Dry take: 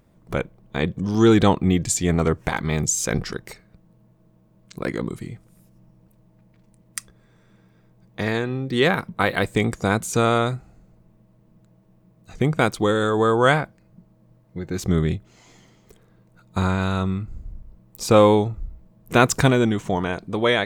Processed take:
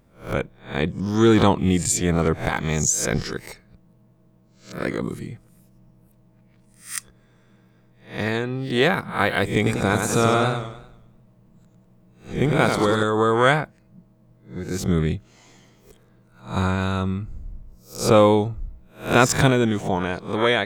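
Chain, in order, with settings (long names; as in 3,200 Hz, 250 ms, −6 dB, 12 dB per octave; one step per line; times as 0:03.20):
peak hold with a rise ahead of every peak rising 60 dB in 0.36 s
0:09.56–0:13.03: feedback echo with a swinging delay time 96 ms, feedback 44%, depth 118 cents, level −5 dB
level −1 dB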